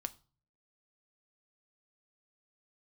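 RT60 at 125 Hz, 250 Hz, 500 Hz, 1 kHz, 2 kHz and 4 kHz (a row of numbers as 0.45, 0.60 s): 0.75, 0.50, 0.35, 0.40, 0.30, 0.35 s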